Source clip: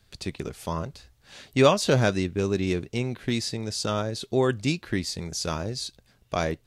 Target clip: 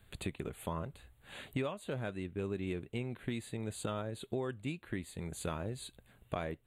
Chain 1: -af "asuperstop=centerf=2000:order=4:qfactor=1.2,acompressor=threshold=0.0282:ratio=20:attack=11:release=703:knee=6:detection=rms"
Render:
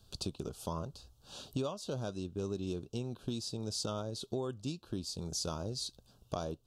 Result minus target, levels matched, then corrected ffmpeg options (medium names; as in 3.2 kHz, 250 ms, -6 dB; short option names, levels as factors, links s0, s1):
2 kHz band -11.5 dB
-af "asuperstop=centerf=5400:order=4:qfactor=1.2,acompressor=threshold=0.0282:ratio=20:attack=11:release=703:knee=6:detection=rms"